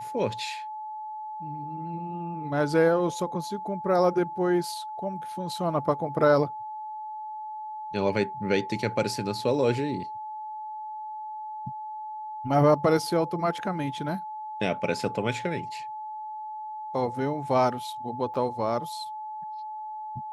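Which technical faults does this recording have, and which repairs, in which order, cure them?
whistle 860 Hz −34 dBFS
0:18.34–0:18.35: drop-out 6.4 ms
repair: notch filter 860 Hz, Q 30
repair the gap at 0:18.34, 6.4 ms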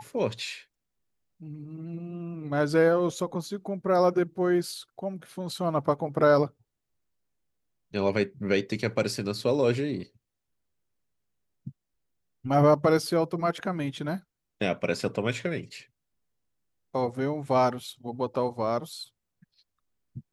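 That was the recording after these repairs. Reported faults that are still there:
none of them is left

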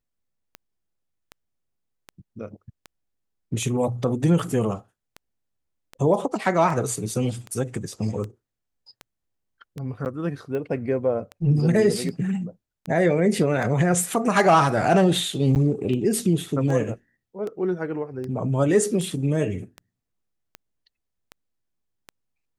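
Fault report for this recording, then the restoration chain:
scratch tick 78 rpm −21 dBFS
0:10.05–0:10.06: drop-out 9.2 ms
0:15.55–0:15.56: drop-out 9.5 ms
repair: click removal
repair the gap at 0:10.05, 9.2 ms
repair the gap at 0:15.55, 9.5 ms

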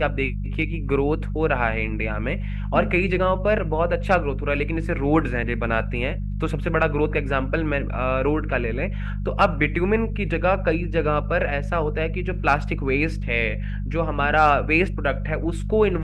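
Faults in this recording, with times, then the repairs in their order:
mains hum 50 Hz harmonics 4 −27 dBFS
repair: hum removal 50 Hz, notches 4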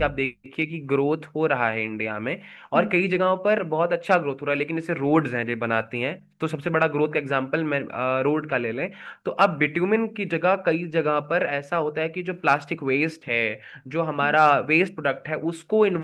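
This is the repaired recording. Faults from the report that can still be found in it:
none of them is left

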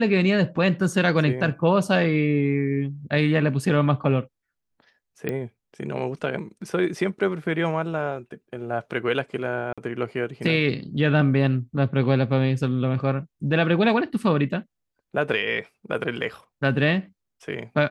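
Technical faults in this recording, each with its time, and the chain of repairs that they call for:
0:05.29: click −15 dBFS
0:09.73–0:09.78: drop-out 46 ms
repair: click removal
repair the gap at 0:09.73, 46 ms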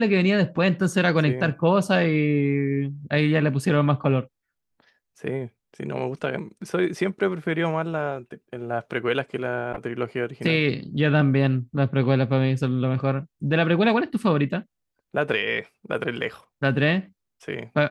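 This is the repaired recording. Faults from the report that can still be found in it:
none of them is left

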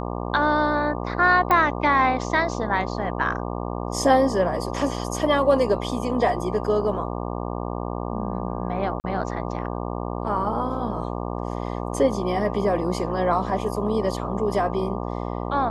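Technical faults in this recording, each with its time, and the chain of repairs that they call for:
mains buzz 60 Hz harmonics 20 −29 dBFS
0:01.51: click −9 dBFS
0:09.00–0:09.04: drop-out 39 ms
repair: click removal
hum removal 60 Hz, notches 20
repair the gap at 0:09.00, 39 ms

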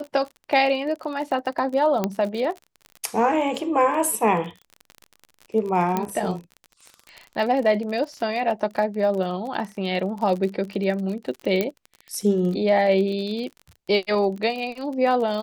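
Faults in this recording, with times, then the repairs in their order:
surface crackle 33 per second −30 dBFS
0:02.04: click −9 dBFS
0:05.97: click −10 dBFS
0:11.61: click −9 dBFS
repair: click removal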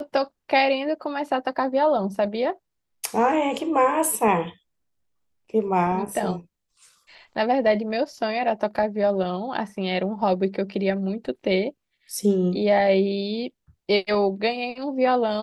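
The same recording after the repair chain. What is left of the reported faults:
none of them is left

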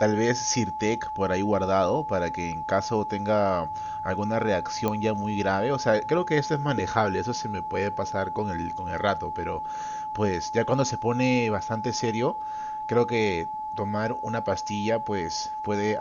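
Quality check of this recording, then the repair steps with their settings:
whistle 860 Hz −30 dBFS
0:04.88: click −13 dBFS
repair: click removal
notch filter 860 Hz, Q 30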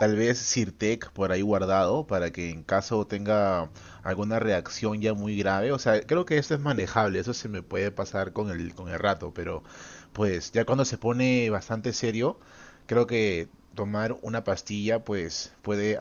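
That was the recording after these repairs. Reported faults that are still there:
none of them is left

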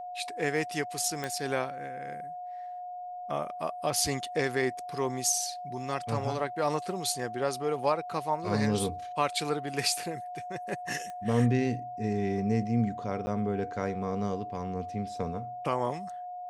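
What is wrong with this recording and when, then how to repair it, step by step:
whistle 720 Hz −37 dBFS
0:01.24: click −18 dBFS
0:11.10: click −28 dBFS
0:13.26–0:13.27: drop-out 10 ms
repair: click removal
notch filter 720 Hz, Q 30
repair the gap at 0:13.26, 10 ms

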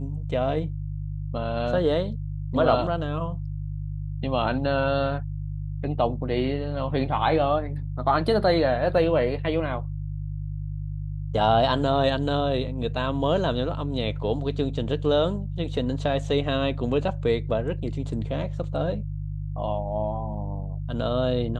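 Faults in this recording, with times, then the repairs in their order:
mains hum 50 Hz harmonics 3 −31 dBFS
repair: hum removal 50 Hz, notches 3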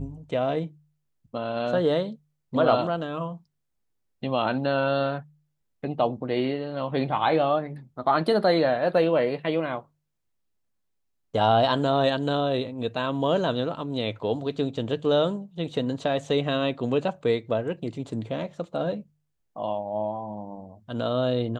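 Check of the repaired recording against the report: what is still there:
none of them is left

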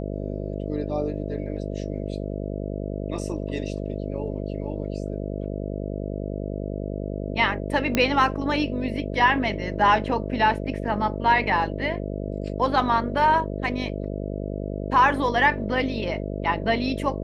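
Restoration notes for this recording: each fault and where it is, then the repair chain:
mains buzz 50 Hz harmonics 13 −30 dBFS
0:07.95: click −7 dBFS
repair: click removal
hum removal 50 Hz, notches 13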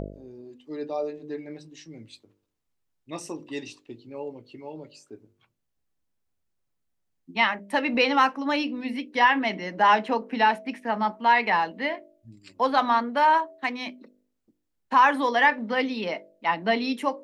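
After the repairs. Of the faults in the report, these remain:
none of them is left

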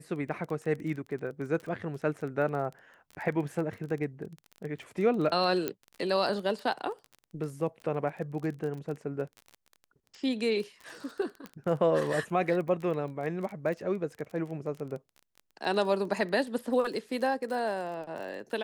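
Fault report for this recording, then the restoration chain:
surface crackle 21 per second −36 dBFS
0:05.68: click −16 dBFS
0:11.46: click −26 dBFS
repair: click removal

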